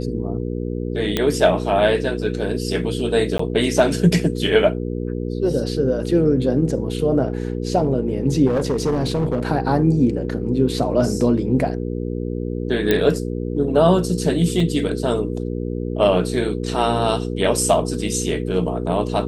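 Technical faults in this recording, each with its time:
mains hum 60 Hz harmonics 8 −25 dBFS
0:01.17: click −5 dBFS
0:03.38–0:03.39: drop-out 14 ms
0:08.46–0:09.48: clipping −15.5 dBFS
0:12.91: click −4 dBFS
0:14.60: drop-out 3 ms

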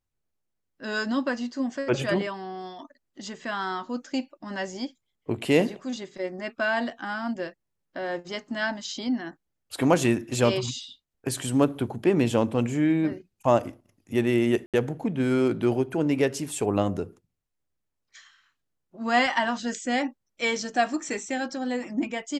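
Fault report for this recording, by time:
0:14.66–0:14.74: drop-out 77 ms

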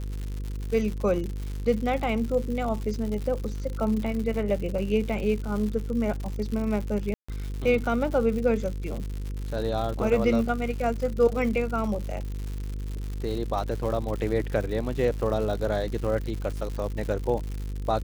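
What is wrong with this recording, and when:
mains buzz 50 Hz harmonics 10 −32 dBFS
surface crackle 160 per second −32 dBFS
0:07.14–0:07.29: drop-out 145 ms

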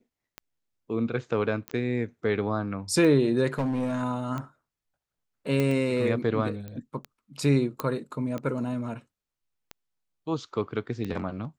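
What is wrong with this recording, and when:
scratch tick 45 rpm −21 dBFS
0:01.68: click −18 dBFS
0:03.47–0:04.03: clipping −23.5 dBFS
0:05.60: click −14 dBFS
0:06.68: click −26 dBFS
0:07.80: click −14 dBFS

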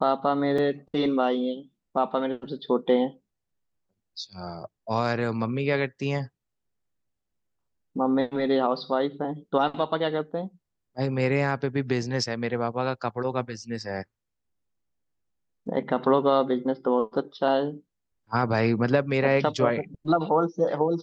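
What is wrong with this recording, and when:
0:00.58: drop-out 4.3 ms

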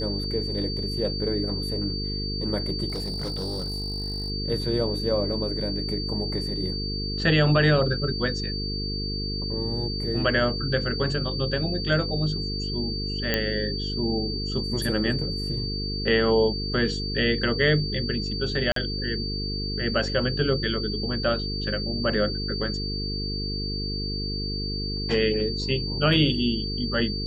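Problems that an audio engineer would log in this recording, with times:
mains buzz 50 Hz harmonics 9 −31 dBFS
whistle 4,600 Hz −31 dBFS
0:02.88–0:04.30: clipping −26 dBFS
0:13.34: click −8 dBFS
0:18.72–0:18.76: drop-out 43 ms

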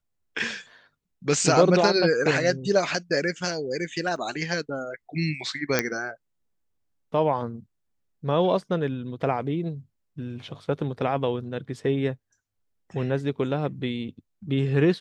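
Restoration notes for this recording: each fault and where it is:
0:04.16: drop-out 2.2 ms
0:05.79: click −6 dBFS

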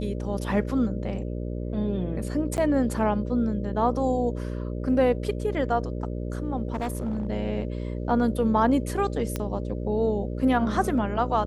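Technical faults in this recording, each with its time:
mains buzz 60 Hz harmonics 10 −31 dBFS
0:02.57–0:02.58: drop-out 9.4 ms
0:06.72–0:07.27: clipping −24.5 dBFS
0:09.36: click −14 dBFS

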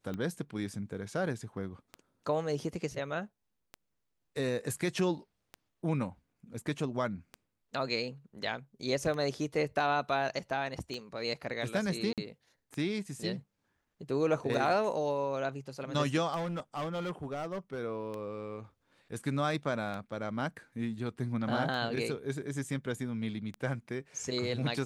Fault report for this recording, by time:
scratch tick 33 1/3 rpm −26 dBFS
0:12.13–0:12.18: drop-out 47 ms
0:16.35–0:17.79: clipping −32 dBFS

